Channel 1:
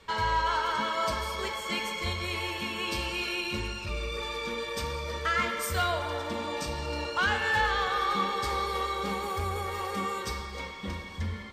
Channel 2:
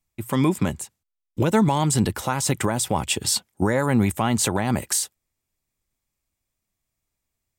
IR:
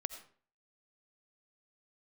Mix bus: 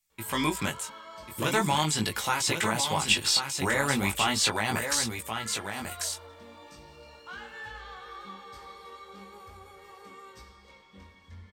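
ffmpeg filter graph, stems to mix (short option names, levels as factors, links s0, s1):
-filter_complex "[0:a]adelay=100,volume=0.224[s0];[1:a]tiltshelf=f=970:g=-9,volume=1,asplit=2[s1][s2];[s2]volume=0.447,aecho=0:1:1093:1[s3];[s0][s1][s3]amix=inputs=3:normalize=0,acrossover=split=5000[s4][s5];[s5]acompressor=threshold=0.0316:ratio=4:attack=1:release=60[s6];[s4][s6]amix=inputs=2:normalize=0,flanger=delay=17.5:depth=4.1:speed=0.4,aeval=exprs='0.355*(cos(1*acos(clip(val(0)/0.355,-1,1)))-cos(1*PI/2))+0.0178*(cos(2*acos(clip(val(0)/0.355,-1,1)))-cos(2*PI/2))':c=same"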